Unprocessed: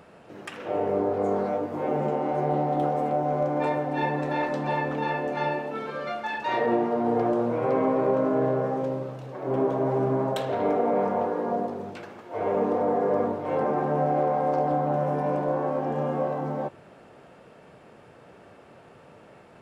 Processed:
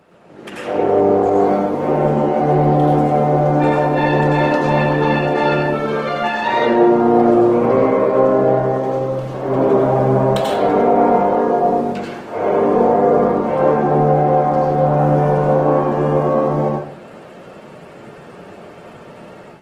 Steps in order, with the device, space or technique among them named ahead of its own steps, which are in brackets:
far-field microphone of a smart speaker (convolution reverb RT60 0.45 s, pre-delay 83 ms, DRR −1 dB; high-pass filter 89 Hz 24 dB per octave; automatic gain control gain up to 9.5 dB; Opus 16 kbit/s 48,000 Hz)

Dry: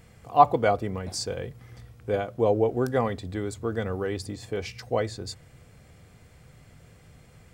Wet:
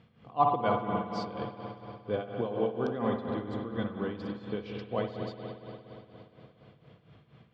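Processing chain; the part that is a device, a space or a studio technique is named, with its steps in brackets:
0:02.41–0:02.87: spectral tilt +2 dB per octave
combo amplifier with spring reverb and tremolo (spring reverb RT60 3.7 s, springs 58 ms, chirp 45 ms, DRR 0.5 dB; amplitude tremolo 4.2 Hz, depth 70%; loudspeaker in its box 100–4,000 Hz, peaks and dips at 140 Hz +6 dB, 220 Hz +6 dB, 310 Hz +3 dB, 1,100 Hz +4 dB, 2,000 Hz −4 dB, 3,300 Hz +6 dB)
level −6 dB

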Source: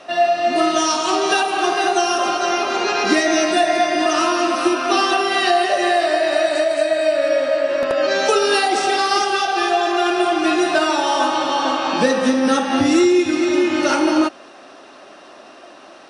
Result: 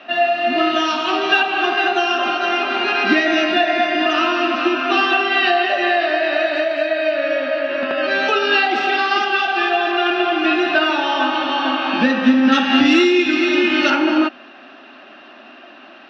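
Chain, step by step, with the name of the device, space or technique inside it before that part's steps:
kitchen radio (loudspeaker in its box 200–3,900 Hz, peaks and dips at 240 Hz +9 dB, 480 Hz −10 dB, 1,000 Hz −3 dB, 1,600 Hz +5 dB, 2,700 Hz +7 dB)
0:12.52–0:13.90: high-shelf EQ 2,900 Hz +11 dB

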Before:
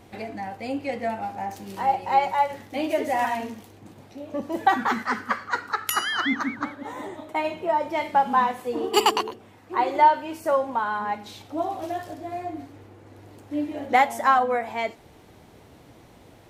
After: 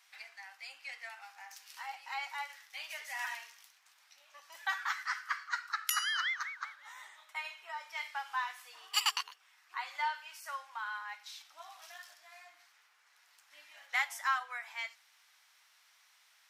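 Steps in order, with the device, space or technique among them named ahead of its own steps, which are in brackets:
headphones lying on a table (high-pass filter 1,300 Hz 24 dB per octave; parametric band 5,400 Hz +6 dB 0.43 octaves)
level −6.5 dB

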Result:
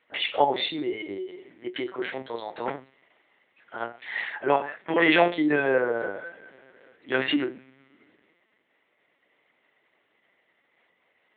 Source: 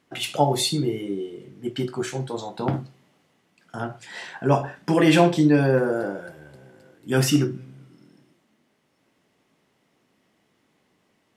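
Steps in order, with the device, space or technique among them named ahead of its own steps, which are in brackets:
talking toy (linear-prediction vocoder at 8 kHz pitch kept; high-pass filter 380 Hz 12 dB per octave; parametric band 2,000 Hz +9.5 dB 0.45 octaves)

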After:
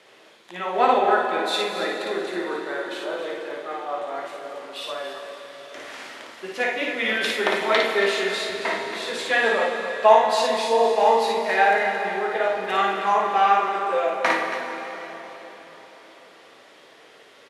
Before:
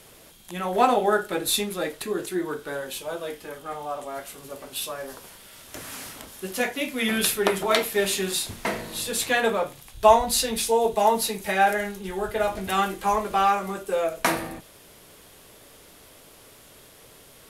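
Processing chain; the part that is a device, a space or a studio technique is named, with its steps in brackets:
station announcement (band-pass filter 360–3,900 Hz; parametric band 1,900 Hz +4.5 dB 0.29 octaves; loudspeakers that aren't time-aligned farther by 19 metres −3 dB, 95 metres −11 dB; convolution reverb RT60 4.3 s, pre-delay 7 ms, DRR 4 dB)

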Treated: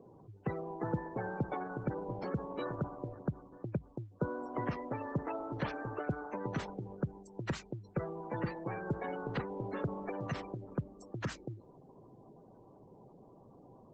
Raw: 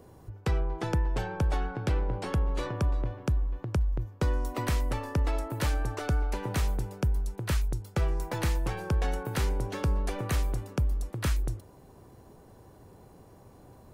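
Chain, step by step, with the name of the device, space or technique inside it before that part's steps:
noise-suppressed video call (high-pass filter 130 Hz 24 dB per octave; gate on every frequency bin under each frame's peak −15 dB strong; level −2 dB; Opus 12 kbit/s 48,000 Hz)

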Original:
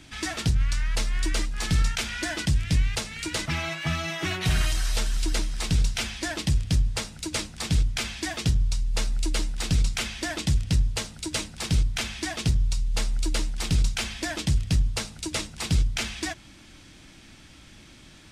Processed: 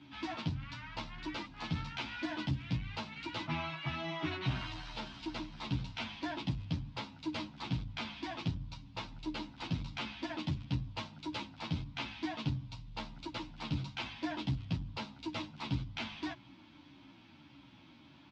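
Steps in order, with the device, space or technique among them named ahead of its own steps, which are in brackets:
barber-pole flanger into a guitar amplifier (barber-pole flanger 10.9 ms −1.6 Hz; soft clipping −17.5 dBFS, distortion −20 dB; loudspeaker in its box 110–4,000 Hz, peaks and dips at 130 Hz +5 dB, 280 Hz +9 dB, 440 Hz −8 dB, 940 Hz +10 dB, 1,800 Hz −6 dB)
level −5.5 dB

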